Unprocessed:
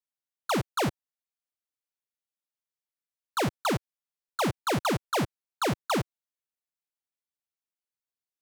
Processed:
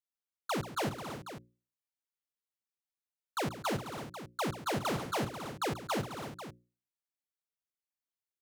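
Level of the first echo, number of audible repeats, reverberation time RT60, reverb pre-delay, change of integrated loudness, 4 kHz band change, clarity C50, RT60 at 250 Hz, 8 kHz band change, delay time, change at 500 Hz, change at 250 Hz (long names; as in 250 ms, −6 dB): −13.5 dB, 4, no reverb audible, no reverb audible, −6.5 dB, −5.5 dB, no reverb audible, no reverb audible, −5.5 dB, 136 ms, −5.5 dB, −6.5 dB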